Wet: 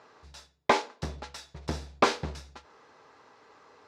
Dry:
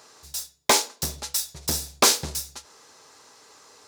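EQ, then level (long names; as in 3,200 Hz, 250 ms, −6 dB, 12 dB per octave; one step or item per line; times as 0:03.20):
low-pass filter 2,200 Hz 12 dB per octave
−1.0 dB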